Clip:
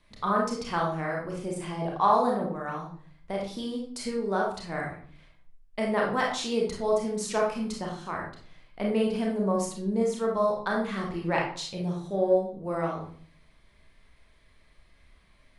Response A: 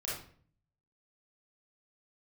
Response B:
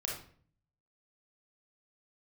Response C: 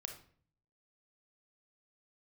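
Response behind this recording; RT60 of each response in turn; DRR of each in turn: B; 0.50, 0.50, 0.50 s; -7.0, -2.0, 4.5 dB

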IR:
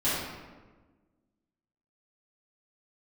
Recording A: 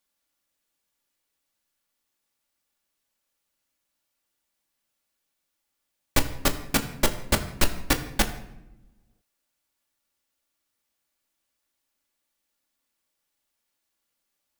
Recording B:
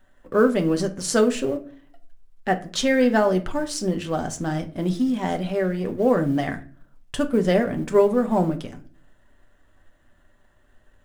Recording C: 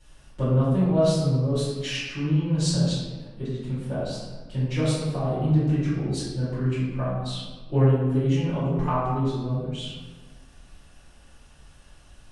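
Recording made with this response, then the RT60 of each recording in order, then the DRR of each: C; 0.90, 0.40, 1.3 s; 3.5, 4.5, -13.0 dB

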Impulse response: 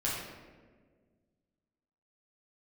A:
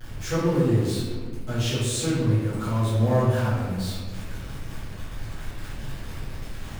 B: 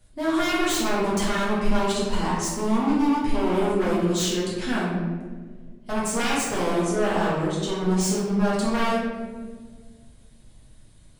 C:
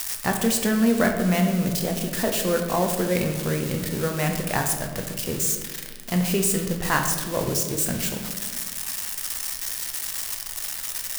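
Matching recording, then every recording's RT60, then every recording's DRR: B; 1.6, 1.6, 1.6 s; -14.0, -7.0, 2.5 dB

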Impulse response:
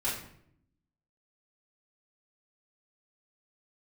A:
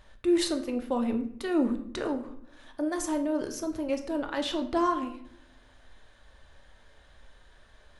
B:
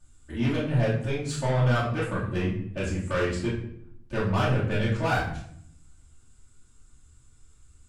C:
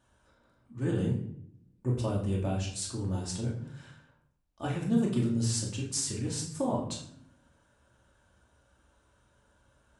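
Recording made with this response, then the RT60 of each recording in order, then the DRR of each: B; 0.70, 0.70, 0.70 s; 5.0, -10.0, -3.5 dB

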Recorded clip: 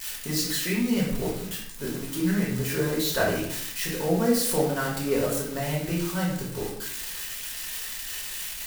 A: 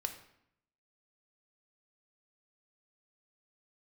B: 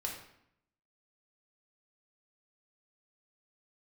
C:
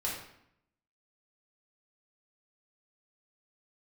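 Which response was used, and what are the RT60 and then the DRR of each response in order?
C; 0.70, 0.70, 0.70 s; 6.0, -1.0, -5.5 dB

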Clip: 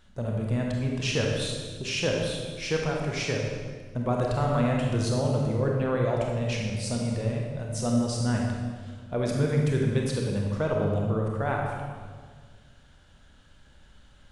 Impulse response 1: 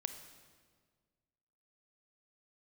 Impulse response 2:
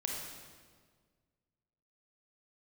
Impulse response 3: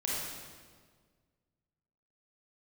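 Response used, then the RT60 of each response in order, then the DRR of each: 2; 1.7, 1.7, 1.7 s; 8.0, -1.0, -6.0 dB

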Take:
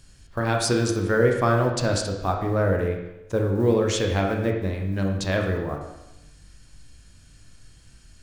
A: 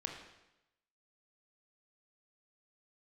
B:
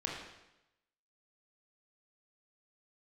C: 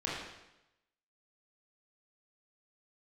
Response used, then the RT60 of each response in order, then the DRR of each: A; 0.90, 0.90, 0.90 s; 1.5, -2.5, -6.5 dB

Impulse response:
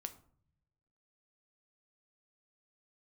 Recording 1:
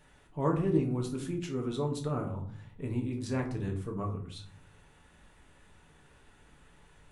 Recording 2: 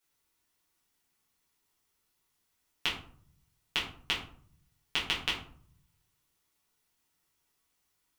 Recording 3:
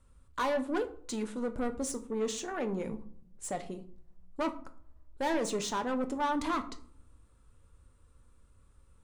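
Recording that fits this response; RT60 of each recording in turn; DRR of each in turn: 3; 0.55, 0.55, 0.60 s; 1.0, -7.0, 8.0 dB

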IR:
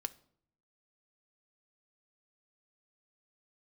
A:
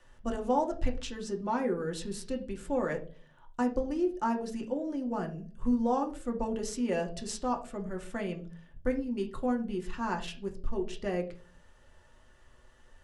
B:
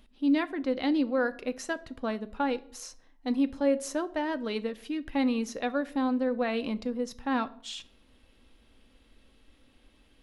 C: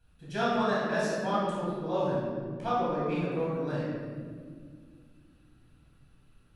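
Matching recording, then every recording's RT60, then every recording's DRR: B; 0.45, 0.60, 1.9 s; 2.0, 10.0, -8.5 dB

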